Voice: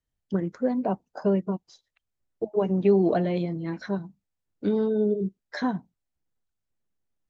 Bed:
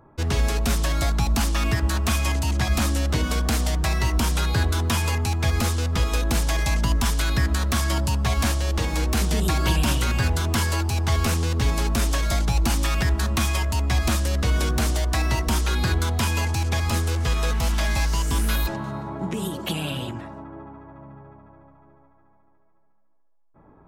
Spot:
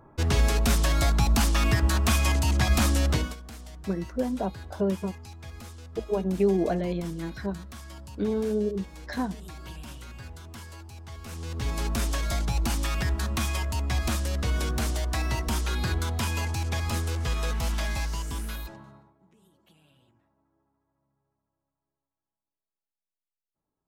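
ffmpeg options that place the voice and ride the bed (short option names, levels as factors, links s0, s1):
-filter_complex "[0:a]adelay=3550,volume=0.708[s0];[1:a]volume=5.31,afade=t=out:st=3.1:d=0.26:silence=0.1,afade=t=in:st=11.24:d=0.63:silence=0.177828,afade=t=out:st=17.72:d=1.42:silence=0.0375837[s1];[s0][s1]amix=inputs=2:normalize=0"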